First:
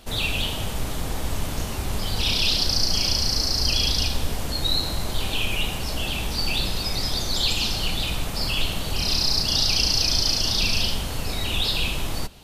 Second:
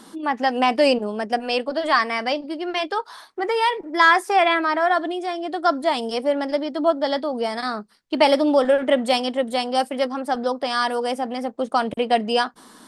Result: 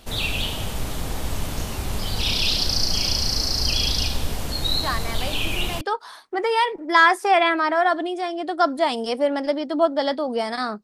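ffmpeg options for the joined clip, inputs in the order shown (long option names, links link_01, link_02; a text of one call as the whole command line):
ffmpeg -i cue0.wav -i cue1.wav -filter_complex "[1:a]asplit=2[link_01][link_02];[0:a]apad=whole_dur=10.83,atrim=end=10.83,atrim=end=5.812[link_03];[link_02]atrim=start=2.858:end=7.88[link_04];[link_01]atrim=start=1.88:end=2.86,asetpts=PTS-STARTPTS,volume=-9dB,afade=type=in:duration=0.004:curve=hsin,afade=type=out:start_time=0.976:duration=0.004:curve=hsin,adelay=4830[link_05];[link_03][link_04]acrossfade=duration=0.004:curve1=hsin:curve2=hsin[link_06];[link_06][link_05]amix=inputs=2:normalize=0" out.wav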